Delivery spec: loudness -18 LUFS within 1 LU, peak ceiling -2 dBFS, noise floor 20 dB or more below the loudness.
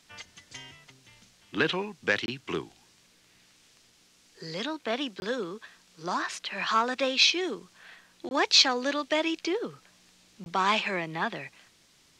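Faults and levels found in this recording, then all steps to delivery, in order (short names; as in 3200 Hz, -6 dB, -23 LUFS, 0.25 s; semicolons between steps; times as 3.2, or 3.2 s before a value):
dropouts 4; longest dropout 21 ms; loudness -27.5 LUFS; peak -8.0 dBFS; loudness target -18.0 LUFS
-> interpolate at 2.26/5.2/8.29/10.44, 21 ms; gain +9.5 dB; limiter -2 dBFS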